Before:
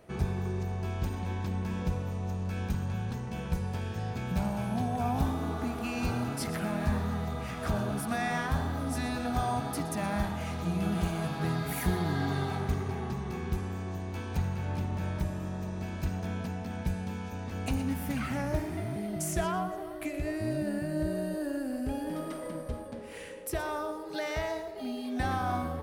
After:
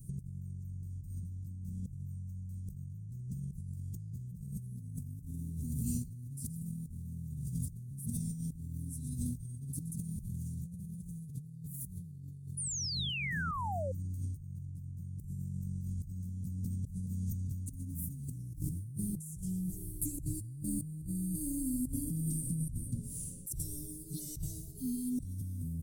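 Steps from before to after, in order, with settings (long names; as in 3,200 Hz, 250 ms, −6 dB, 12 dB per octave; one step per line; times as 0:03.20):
Chebyshev band-stop filter 160–8,200 Hz, order 3
comb filter 7.3 ms, depth 50%
compressor whose output falls as the input rises −46 dBFS, ratio −1
sound drawn into the spectrogram fall, 0:12.57–0:13.92, 500–10,000 Hz −43 dBFS
level +5.5 dB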